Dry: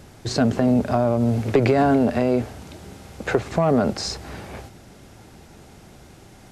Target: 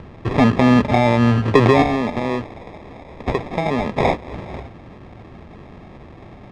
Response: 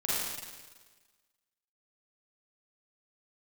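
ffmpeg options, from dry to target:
-filter_complex "[0:a]adynamicequalizer=threshold=0.0126:dfrequency=1100:dqfactor=1.3:tfrequency=1100:tqfactor=1.3:attack=5:release=100:ratio=0.375:range=2.5:mode=cutabove:tftype=bell,acompressor=mode=upward:threshold=-41dB:ratio=2.5,asettb=1/sr,asplit=3[a][b][c];[a]atrim=end=1.824[d];[b]atrim=start=1.82:end=4.32,asetpts=PTS-STARTPTS,afade=t=in:d=0.004:c=qsin,afade=t=out:st=2.496:d=0.004:c=qsin,tiltshelf=f=1.4k:g=-9[e];[c]atrim=start=4.316[f];[d][e]acrossfade=d=0.004:c1=hsin:c2=qsin[g];[g][f]acrossfade=d=0.004:c1=qsin:c2=hsin,acrusher=samples=30:mix=1:aa=0.000001,lowpass=2.8k,volume=5.5dB"

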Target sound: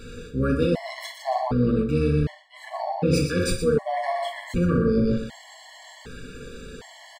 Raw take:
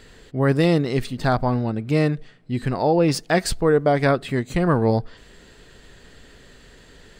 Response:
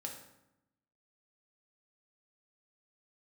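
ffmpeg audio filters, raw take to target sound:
-filter_complex "[0:a]acontrast=44,asplit=2[a][b];[b]asetrate=22050,aresample=44100,atempo=2,volume=-6dB[c];[a][c]amix=inputs=2:normalize=0,asplit=2[d][e];[e]aecho=0:1:121|242|363:0.501|0.1|0.02[f];[d][f]amix=inputs=2:normalize=0[g];[1:a]atrim=start_sample=2205,atrim=end_sample=3528,asetrate=38367,aresample=44100[h];[g][h]afir=irnorm=-1:irlink=0,areverse,acompressor=threshold=-22dB:ratio=5,areverse,afftfilt=real='re*gt(sin(2*PI*0.66*pts/sr)*(1-2*mod(floor(b*sr/1024/570),2)),0)':imag='im*gt(sin(2*PI*0.66*pts/sr)*(1-2*mod(floor(b*sr/1024/570),2)),0)':win_size=1024:overlap=0.75,volume=3.5dB"

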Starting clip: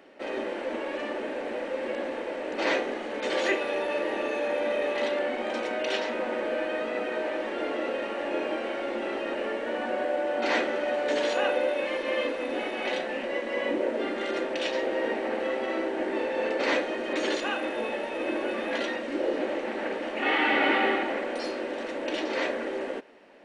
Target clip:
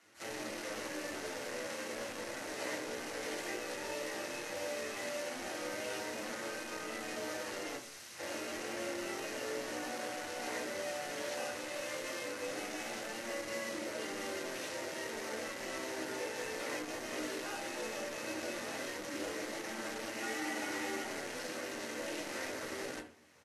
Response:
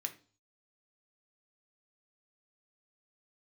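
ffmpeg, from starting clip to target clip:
-filter_complex "[0:a]acrossover=split=980|4200[a][b][c];[a]acompressor=threshold=-30dB:ratio=4[d];[b]acompressor=threshold=-42dB:ratio=4[e];[c]acompressor=threshold=-57dB:ratio=4[f];[d][e][f]amix=inputs=3:normalize=0,flanger=delay=8.9:depth=7.5:regen=-3:speed=0.15:shape=sinusoidal,asplit=2[g][h];[h]adelay=62,lowpass=f=870:p=1,volume=-22dB,asplit=2[i][j];[j]adelay=62,lowpass=f=870:p=1,volume=0.22[k];[g][i][k]amix=inputs=3:normalize=0,acrusher=bits=7:dc=4:mix=0:aa=0.000001,asplit=3[l][m][n];[l]afade=t=out:st=7.76:d=0.02[o];[m]aeval=exprs='(mod(112*val(0)+1,2)-1)/112':c=same,afade=t=in:st=7.76:d=0.02,afade=t=out:st=8.18:d=0.02[p];[n]afade=t=in:st=8.18:d=0.02[q];[o][p][q]amix=inputs=3:normalize=0[r];[1:a]atrim=start_sample=2205,asetrate=34839,aresample=44100[s];[r][s]afir=irnorm=-1:irlink=0,volume=-3.5dB" -ar 32000 -c:a libvorbis -b:a 32k

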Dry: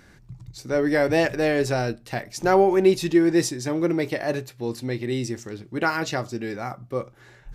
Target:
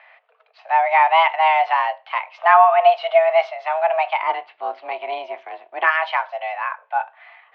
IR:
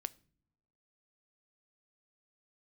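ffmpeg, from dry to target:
-filter_complex "[0:a]highpass=f=360:t=q:w=0.5412,highpass=f=360:t=q:w=1.307,lowpass=f=2.9k:t=q:w=0.5176,lowpass=f=2.9k:t=q:w=0.7071,lowpass=f=2.9k:t=q:w=1.932,afreqshift=320,asplit=2[a][b];[1:a]atrim=start_sample=2205[c];[b][c]afir=irnorm=-1:irlink=0,volume=7.5dB[d];[a][d]amix=inputs=2:normalize=0,asplit=3[e][f][g];[e]afade=t=out:st=4.21:d=0.02[h];[f]tremolo=f=290:d=0.571,afade=t=in:st=4.21:d=0.02,afade=t=out:st=5.86:d=0.02[i];[g]afade=t=in:st=5.86:d=0.02[j];[h][i][j]amix=inputs=3:normalize=0,volume=-2dB"

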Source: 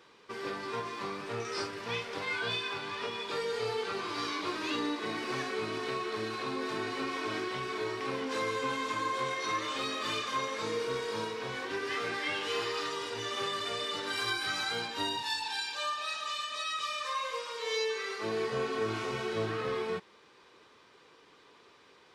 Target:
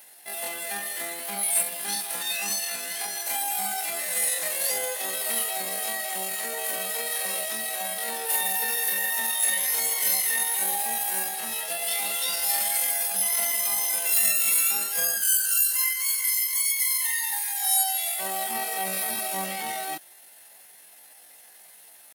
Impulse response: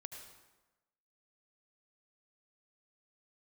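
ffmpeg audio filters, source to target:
-af "highshelf=f=5k:t=q:w=3:g=8,crystalizer=i=5:c=0,asetrate=76340,aresample=44100,atempo=0.577676"

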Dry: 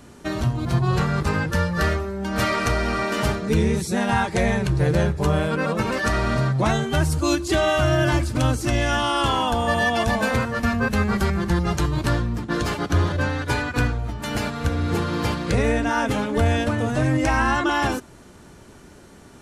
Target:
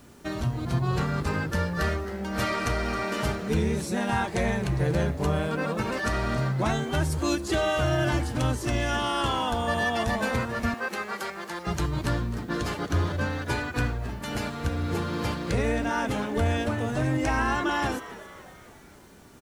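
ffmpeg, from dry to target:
-filter_complex "[0:a]asettb=1/sr,asplit=3[a][b][c];[a]atrim=end=10.744[d];[b]atrim=start=10.74:end=11.67,asetpts=PTS-STARTPTS,afade=t=in:d=0.004:c=qsin,afade=t=out:st=0.926:d=0.004:c=qsin,highpass=510[e];[c]atrim=start=11.666[f];[d][e]acrossfade=d=0.004:c1=hsin:c2=qsin[g];[g][f]acrossfade=d=0.004:c1=qsin:c2=hsin,asplit=6[h][i][j][k][l][m];[i]adelay=270,afreqshift=130,volume=-16dB[n];[j]adelay=540,afreqshift=260,volume=-21.7dB[o];[k]adelay=810,afreqshift=390,volume=-27.4dB[p];[l]adelay=1080,afreqshift=520,volume=-33dB[q];[m]adelay=1350,afreqshift=650,volume=-38.7dB[r];[h][n][o][p][q][r]amix=inputs=6:normalize=0,acrusher=bits=8:mix=0:aa=0.000001,volume=-5.5dB"

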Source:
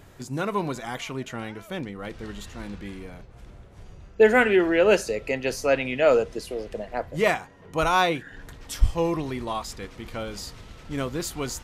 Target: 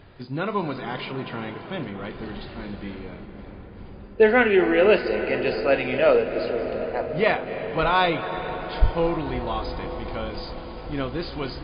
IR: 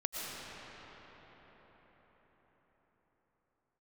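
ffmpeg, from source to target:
-filter_complex "[0:a]asplit=2[a][b];[1:a]atrim=start_sample=2205,asetrate=25578,aresample=44100,adelay=40[c];[b][c]afir=irnorm=-1:irlink=0,volume=-15dB[d];[a][d]amix=inputs=2:normalize=0,volume=1dB" -ar 11025 -c:a libmp3lame -b:a 24k

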